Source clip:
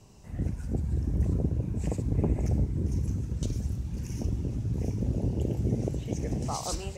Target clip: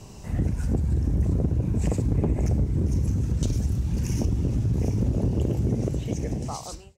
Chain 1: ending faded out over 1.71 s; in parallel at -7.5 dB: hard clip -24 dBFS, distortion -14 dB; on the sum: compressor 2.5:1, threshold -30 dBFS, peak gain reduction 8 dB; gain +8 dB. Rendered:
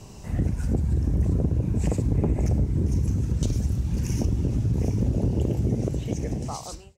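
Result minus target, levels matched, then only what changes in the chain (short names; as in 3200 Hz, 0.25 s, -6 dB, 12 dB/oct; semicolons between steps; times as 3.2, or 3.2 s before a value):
hard clip: distortion -7 dB
change: hard clip -31 dBFS, distortion -7 dB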